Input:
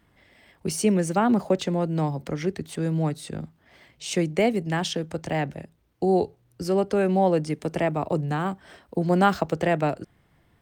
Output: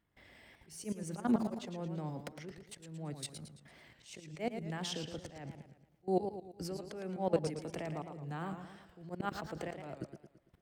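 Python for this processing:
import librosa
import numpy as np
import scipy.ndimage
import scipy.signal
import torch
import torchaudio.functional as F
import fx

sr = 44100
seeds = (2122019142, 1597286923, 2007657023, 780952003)

y = fx.level_steps(x, sr, step_db=20)
y = fx.auto_swell(y, sr, attack_ms=324.0)
y = fx.echo_warbled(y, sr, ms=112, feedback_pct=46, rate_hz=2.8, cents=145, wet_db=-8.0)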